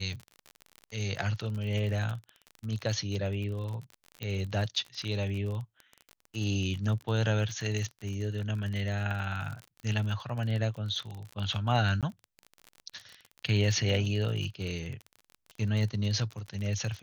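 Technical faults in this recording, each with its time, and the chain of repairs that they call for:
crackle 35 per s -35 dBFS
4.23 s: pop -22 dBFS
12.01–12.03 s: dropout 17 ms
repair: de-click; interpolate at 12.01 s, 17 ms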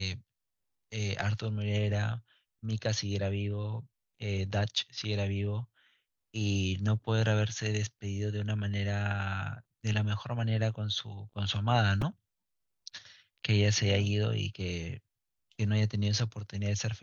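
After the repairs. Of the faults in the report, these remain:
nothing left

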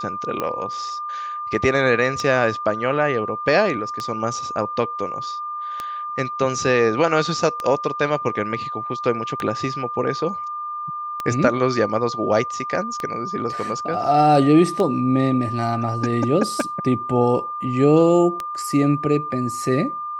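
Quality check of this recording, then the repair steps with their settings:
tick 33 1/3 rpm -11 dBFS
whine 1.2 kHz -26 dBFS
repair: de-click; band-stop 1.2 kHz, Q 30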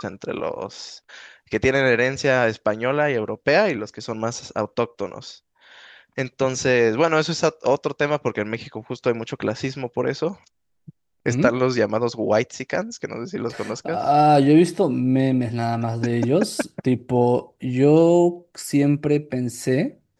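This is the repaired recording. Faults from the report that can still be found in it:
nothing left

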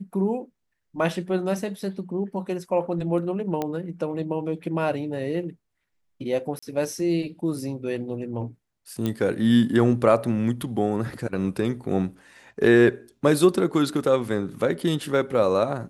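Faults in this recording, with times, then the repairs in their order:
3.62 s: pop -14 dBFS
6.59–6.62 s: dropout 35 ms
9.06 s: pop -14 dBFS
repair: de-click; interpolate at 6.59 s, 35 ms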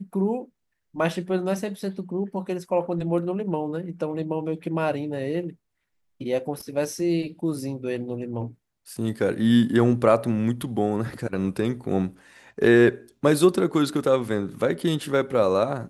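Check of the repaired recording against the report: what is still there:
nothing left

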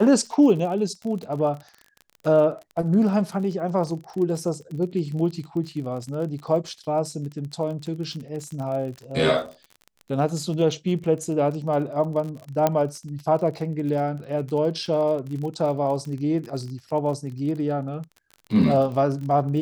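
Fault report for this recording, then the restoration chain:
crackle 37 per s -32 dBFS
12.67 s: pop -7 dBFS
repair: de-click

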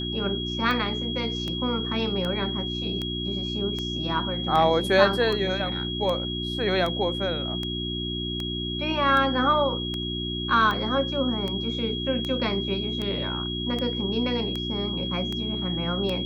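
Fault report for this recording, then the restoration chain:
hum 60 Hz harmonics 6 -32 dBFS
tick 78 rpm -17 dBFS
whine 3.3 kHz -31 dBFS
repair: de-click; de-hum 60 Hz, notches 6; band-stop 3.3 kHz, Q 30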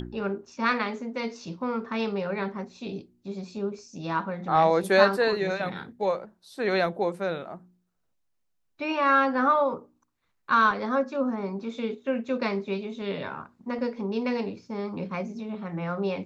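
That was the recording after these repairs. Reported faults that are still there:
nothing left

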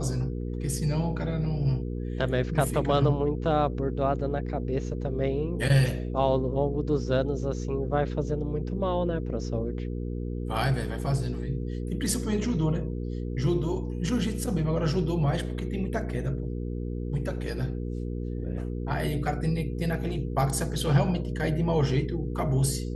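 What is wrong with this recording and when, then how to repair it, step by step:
hum 60 Hz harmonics 8 -32 dBFS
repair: de-hum 60 Hz, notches 8

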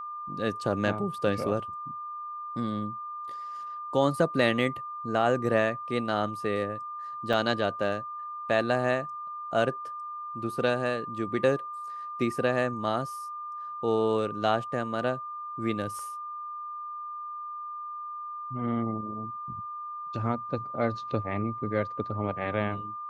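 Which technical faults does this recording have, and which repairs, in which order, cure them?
whine 1.2 kHz -35 dBFS
7.33–7.34 s: dropout 5.3 ms
15.99 s: dropout 2.1 ms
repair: band-stop 1.2 kHz, Q 30; interpolate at 7.33 s, 5.3 ms; interpolate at 15.99 s, 2.1 ms

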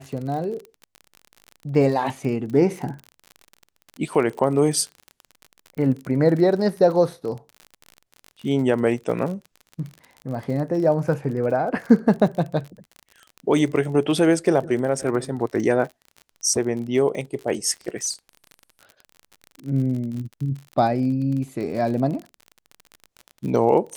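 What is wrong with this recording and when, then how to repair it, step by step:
crackle 40 per s -30 dBFS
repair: de-click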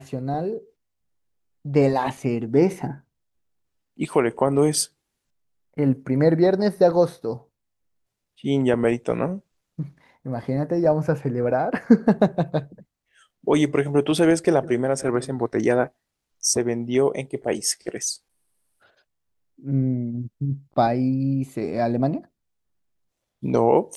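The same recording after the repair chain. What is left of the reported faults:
nothing left

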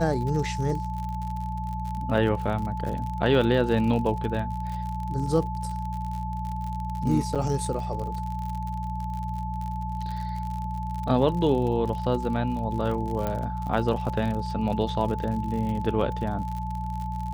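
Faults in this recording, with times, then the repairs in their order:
crackle 53 per s -32 dBFS
hum 60 Hz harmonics 3 -32 dBFS
whine 870 Hz -33 dBFS
7.35–7.36 s: dropout 6.9 ms
13.27 s: pop -16 dBFS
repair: de-click; band-stop 870 Hz, Q 30; de-hum 60 Hz, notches 3; interpolate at 7.35 s, 6.9 ms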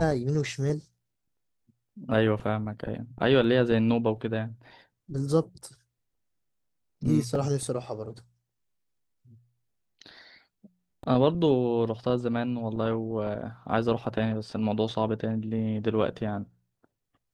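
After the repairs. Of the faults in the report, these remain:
nothing left

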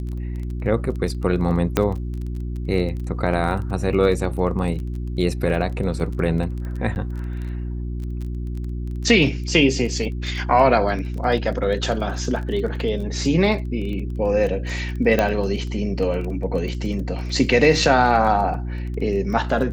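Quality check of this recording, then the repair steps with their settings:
crackle 21 per s -29 dBFS
hum 60 Hz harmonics 6 -27 dBFS
1.77 s: pop -4 dBFS
6.95–6.96 s: dropout 9.9 ms
15.19 s: pop -6 dBFS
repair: de-click; de-hum 60 Hz, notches 6; interpolate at 6.95 s, 9.9 ms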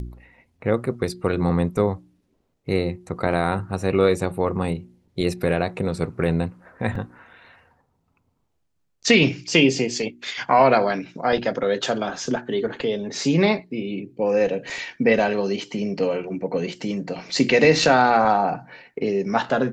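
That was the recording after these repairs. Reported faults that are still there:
15.19 s: pop

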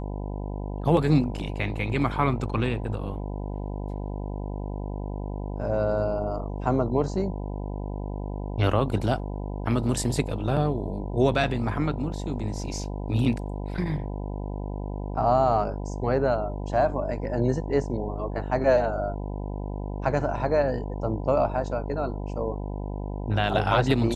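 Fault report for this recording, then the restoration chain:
buzz 50 Hz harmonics 20 -32 dBFS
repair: de-hum 50 Hz, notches 20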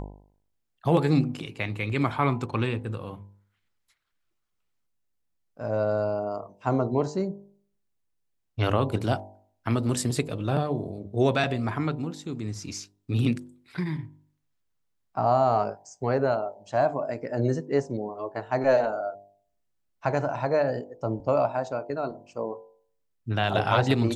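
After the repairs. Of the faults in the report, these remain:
nothing left

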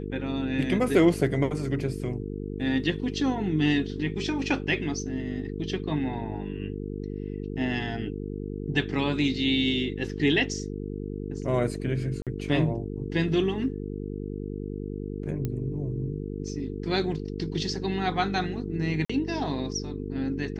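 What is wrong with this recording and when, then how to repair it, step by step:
buzz 50 Hz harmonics 9 -34 dBFS
12.22–12.27 s: dropout 47 ms
15.45 s: pop -18 dBFS
19.05–19.09 s: dropout 45 ms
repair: de-click; de-hum 50 Hz, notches 9; interpolate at 12.22 s, 47 ms; interpolate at 19.05 s, 45 ms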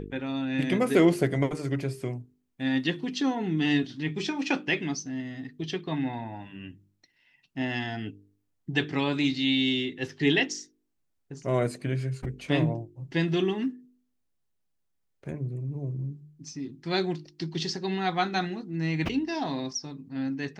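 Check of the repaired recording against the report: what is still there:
nothing left

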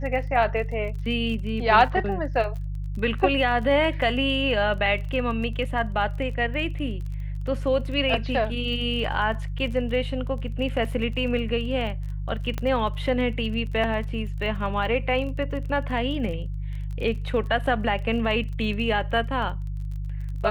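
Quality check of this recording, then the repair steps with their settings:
crackle 26 per s -34 dBFS
hum 50 Hz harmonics 3 -30 dBFS
12.58 s: pop -15 dBFS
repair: de-click; de-hum 50 Hz, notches 3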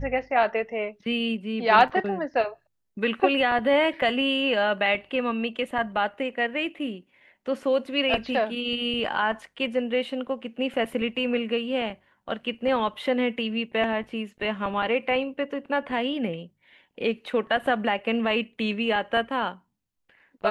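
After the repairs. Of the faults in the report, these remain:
nothing left

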